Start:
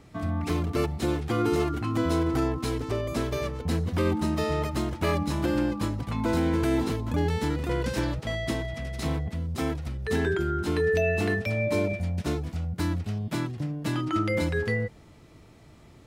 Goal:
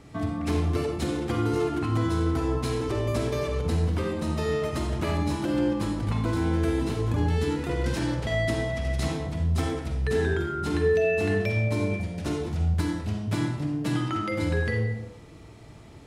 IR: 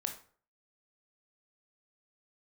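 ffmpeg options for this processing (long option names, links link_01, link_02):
-filter_complex "[0:a]acompressor=threshold=-28dB:ratio=6[link_01];[1:a]atrim=start_sample=2205,asetrate=22932,aresample=44100[link_02];[link_01][link_02]afir=irnorm=-1:irlink=0"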